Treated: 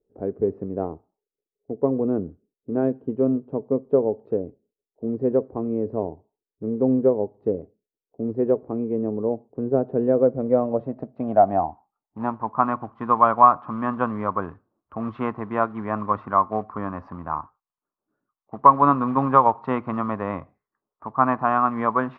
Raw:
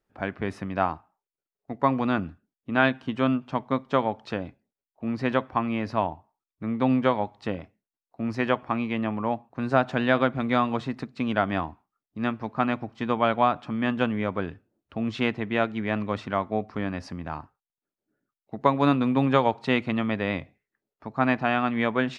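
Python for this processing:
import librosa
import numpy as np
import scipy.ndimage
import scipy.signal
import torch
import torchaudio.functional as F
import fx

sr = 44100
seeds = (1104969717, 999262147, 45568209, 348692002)

y = fx.quant_float(x, sr, bits=2)
y = fx.filter_sweep_lowpass(y, sr, from_hz=440.0, to_hz=1100.0, start_s=10.02, end_s=12.73, q=5.7)
y = y * librosa.db_to_amplitude(-1.5)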